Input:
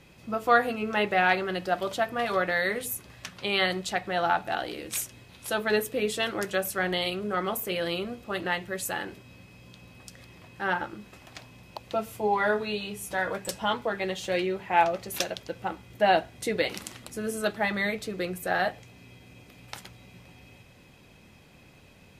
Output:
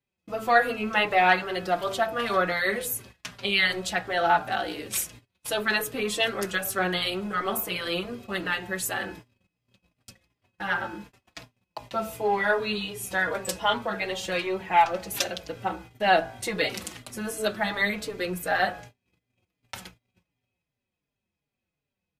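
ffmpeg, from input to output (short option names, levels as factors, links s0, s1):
-filter_complex "[0:a]acrossover=split=640|1500[s0][s1][s2];[s0]asoftclip=type=tanh:threshold=0.0316[s3];[s3][s1][s2]amix=inputs=3:normalize=0,bandreject=f=55.28:t=h:w=4,bandreject=f=110.56:t=h:w=4,bandreject=f=165.84:t=h:w=4,bandreject=f=221.12:t=h:w=4,bandreject=f=276.4:t=h:w=4,bandreject=f=331.68:t=h:w=4,bandreject=f=386.96:t=h:w=4,bandreject=f=442.24:t=h:w=4,bandreject=f=497.52:t=h:w=4,bandreject=f=552.8:t=h:w=4,bandreject=f=608.08:t=h:w=4,bandreject=f=663.36:t=h:w=4,bandreject=f=718.64:t=h:w=4,bandreject=f=773.92:t=h:w=4,bandreject=f=829.2:t=h:w=4,bandreject=f=884.48:t=h:w=4,bandreject=f=939.76:t=h:w=4,bandreject=f=995.04:t=h:w=4,bandreject=f=1050.32:t=h:w=4,bandreject=f=1105.6:t=h:w=4,bandreject=f=1160.88:t=h:w=4,bandreject=f=1216.16:t=h:w=4,bandreject=f=1271.44:t=h:w=4,bandreject=f=1326.72:t=h:w=4,bandreject=f=1382:t=h:w=4,bandreject=f=1437.28:t=h:w=4,bandreject=f=1492.56:t=h:w=4,bandreject=f=1547.84:t=h:w=4,bandreject=f=1603.12:t=h:w=4,bandreject=f=1658.4:t=h:w=4,bandreject=f=1713.68:t=h:w=4,agate=range=0.02:threshold=0.00501:ratio=16:detection=peak,asplit=2[s4][s5];[s5]adelay=4.5,afreqshift=-2.7[s6];[s4][s6]amix=inputs=2:normalize=1,volume=2"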